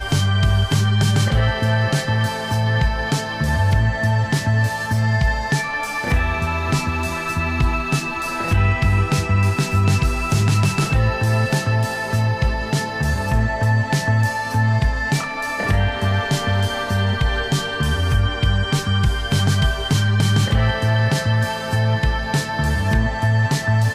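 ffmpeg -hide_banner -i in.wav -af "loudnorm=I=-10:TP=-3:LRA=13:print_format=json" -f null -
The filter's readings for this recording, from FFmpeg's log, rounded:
"input_i" : "-19.3",
"input_tp" : "-7.2",
"input_lra" : "1.6",
"input_thresh" : "-29.3",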